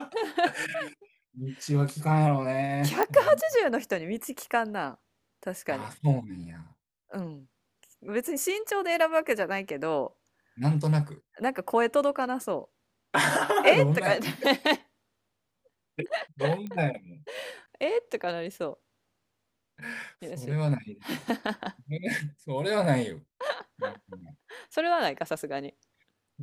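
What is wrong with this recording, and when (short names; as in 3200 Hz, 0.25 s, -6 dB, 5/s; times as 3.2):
3.03 pop -12 dBFS
16.67 pop -25 dBFS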